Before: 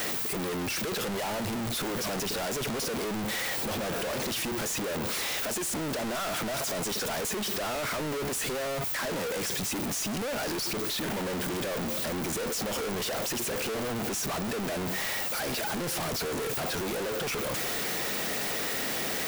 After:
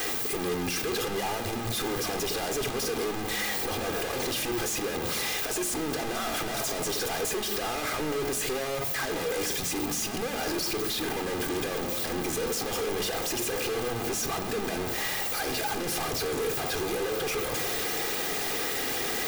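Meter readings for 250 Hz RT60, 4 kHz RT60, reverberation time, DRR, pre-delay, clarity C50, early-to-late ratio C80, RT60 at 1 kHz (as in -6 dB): 1.5 s, 0.75 s, 1.1 s, 8.5 dB, 3 ms, 11.5 dB, 13.0 dB, 1.0 s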